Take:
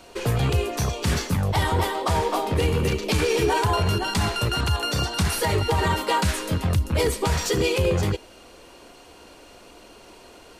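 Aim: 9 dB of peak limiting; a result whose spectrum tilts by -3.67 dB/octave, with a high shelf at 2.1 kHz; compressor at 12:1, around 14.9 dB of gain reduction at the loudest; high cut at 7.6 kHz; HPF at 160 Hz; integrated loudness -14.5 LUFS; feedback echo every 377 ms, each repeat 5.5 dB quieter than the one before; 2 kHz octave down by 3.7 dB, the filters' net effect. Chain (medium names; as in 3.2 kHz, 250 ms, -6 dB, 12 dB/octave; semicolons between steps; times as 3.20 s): high-pass 160 Hz; low-pass 7.6 kHz; peaking EQ 2 kHz -9 dB; treble shelf 2.1 kHz +5.5 dB; compression 12:1, threshold -34 dBFS; peak limiter -31.5 dBFS; feedback delay 377 ms, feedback 53%, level -5.5 dB; trim +25 dB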